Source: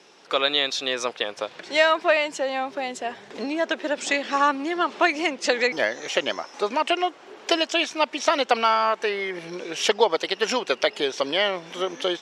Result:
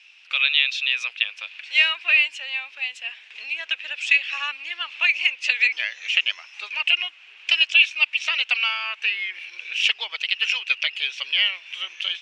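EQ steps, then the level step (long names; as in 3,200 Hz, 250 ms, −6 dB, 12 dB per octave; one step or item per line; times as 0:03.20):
high-pass with resonance 2,600 Hz, resonance Q 7.3
high-shelf EQ 3,800 Hz −12 dB
0.0 dB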